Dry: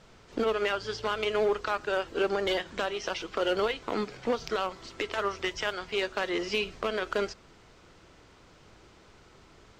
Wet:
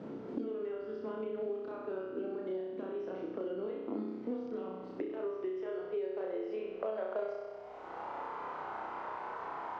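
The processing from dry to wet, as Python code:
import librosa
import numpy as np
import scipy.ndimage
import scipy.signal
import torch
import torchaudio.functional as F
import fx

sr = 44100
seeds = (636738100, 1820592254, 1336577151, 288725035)

y = np.diff(x, prepend=0.0)
y = fx.rider(y, sr, range_db=10, speed_s=0.5)
y = fx.filter_sweep_lowpass(y, sr, from_hz=280.0, to_hz=920.0, start_s=4.68, end_s=8.24, q=3.4)
y = fx.room_flutter(y, sr, wall_m=5.5, rt60_s=0.93)
y = fx.band_squash(y, sr, depth_pct=100)
y = y * 10.0 ** (12.0 / 20.0)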